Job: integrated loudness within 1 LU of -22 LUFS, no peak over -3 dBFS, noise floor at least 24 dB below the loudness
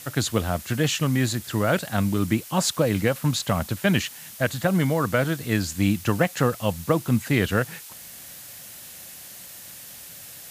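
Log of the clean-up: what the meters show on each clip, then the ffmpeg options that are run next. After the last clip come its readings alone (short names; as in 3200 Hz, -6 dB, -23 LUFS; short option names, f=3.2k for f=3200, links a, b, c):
noise floor -42 dBFS; noise floor target -48 dBFS; loudness -24.0 LUFS; peak -7.5 dBFS; loudness target -22.0 LUFS
-> -af "afftdn=nr=6:nf=-42"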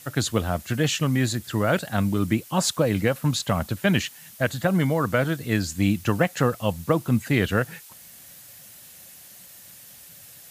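noise floor -47 dBFS; noise floor target -48 dBFS
-> -af "afftdn=nr=6:nf=-47"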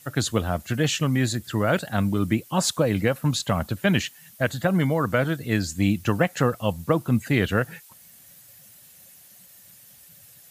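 noise floor -51 dBFS; loudness -24.0 LUFS; peak -8.0 dBFS; loudness target -22.0 LUFS
-> -af "volume=2dB"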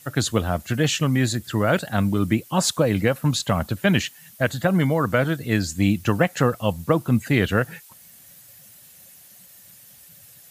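loudness -22.0 LUFS; peak -6.0 dBFS; noise floor -49 dBFS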